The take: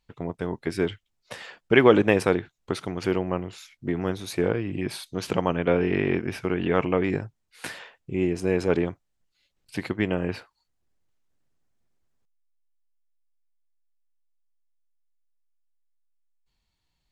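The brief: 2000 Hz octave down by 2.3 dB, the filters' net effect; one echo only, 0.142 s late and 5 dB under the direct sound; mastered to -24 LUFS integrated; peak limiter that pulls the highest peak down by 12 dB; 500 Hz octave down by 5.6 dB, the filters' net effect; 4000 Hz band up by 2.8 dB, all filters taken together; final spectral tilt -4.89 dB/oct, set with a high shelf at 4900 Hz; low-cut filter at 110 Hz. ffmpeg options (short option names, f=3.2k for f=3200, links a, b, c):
-af "highpass=110,equalizer=f=500:t=o:g=-7,equalizer=f=2k:t=o:g=-3.5,equalizer=f=4k:t=o:g=6.5,highshelf=f=4.9k:g=-3,alimiter=limit=-16.5dB:level=0:latency=1,aecho=1:1:142:0.562,volume=6.5dB"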